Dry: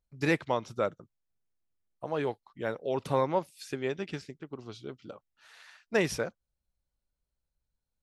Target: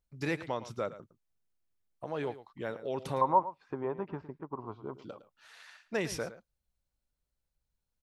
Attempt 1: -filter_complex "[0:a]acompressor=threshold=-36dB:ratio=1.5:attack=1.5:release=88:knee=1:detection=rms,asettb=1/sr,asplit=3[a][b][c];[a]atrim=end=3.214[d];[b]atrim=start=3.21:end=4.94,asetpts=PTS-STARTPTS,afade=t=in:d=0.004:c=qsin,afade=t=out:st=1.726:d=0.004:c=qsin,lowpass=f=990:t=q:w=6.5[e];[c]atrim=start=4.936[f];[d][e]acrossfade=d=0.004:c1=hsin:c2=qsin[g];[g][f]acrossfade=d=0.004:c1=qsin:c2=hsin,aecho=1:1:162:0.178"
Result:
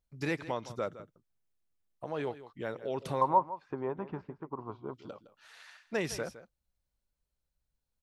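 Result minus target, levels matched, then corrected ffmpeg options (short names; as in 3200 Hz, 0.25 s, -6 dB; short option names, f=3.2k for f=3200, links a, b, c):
echo 52 ms late
-filter_complex "[0:a]acompressor=threshold=-36dB:ratio=1.5:attack=1.5:release=88:knee=1:detection=rms,asettb=1/sr,asplit=3[a][b][c];[a]atrim=end=3.214[d];[b]atrim=start=3.21:end=4.94,asetpts=PTS-STARTPTS,afade=t=in:d=0.004:c=qsin,afade=t=out:st=1.726:d=0.004:c=qsin,lowpass=f=990:t=q:w=6.5[e];[c]atrim=start=4.936[f];[d][e]acrossfade=d=0.004:c1=hsin:c2=qsin[g];[g][f]acrossfade=d=0.004:c1=qsin:c2=hsin,aecho=1:1:110:0.178"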